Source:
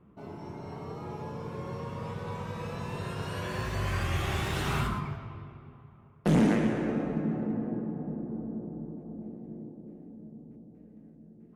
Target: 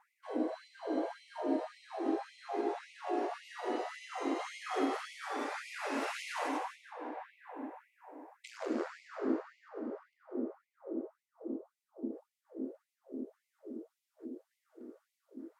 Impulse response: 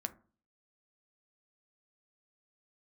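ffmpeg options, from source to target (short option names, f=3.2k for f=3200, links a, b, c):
-filter_complex "[0:a]tiltshelf=f=710:g=6,bandreject=f=130.5:t=h:w=4,bandreject=f=261:t=h:w=4,bandreject=f=391.5:t=h:w=4,aeval=exprs='val(0)+0.00112*(sin(2*PI*50*n/s)+sin(2*PI*2*50*n/s)/2+sin(2*PI*3*50*n/s)/3+sin(2*PI*4*50*n/s)/4+sin(2*PI*5*50*n/s)/5)':c=same,acompressor=threshold=-38dB:ratio=5,asplit=2[a][b];[1:a]atrim=start_sample=2205,adelay=130[c];[b][c]afir=irnorm=-1:irlink=0,volume=-8.5dB[d];[a][d]amix=inputs=2:normalize=0,asetrate=32667,aresample=44100,afftfilt=real='re*gte(b*sr/1024,230*pow(2000/230,0.5+0.5*sin(2*PI*1.8*pts/sr)))':imag='im*gte(b*sr/1024,230*pow(2000/230,0.5+0.5*sin(2*PI*1.8*pts/sr)))':win_size=1024:overlap=0.75,volume=14dB"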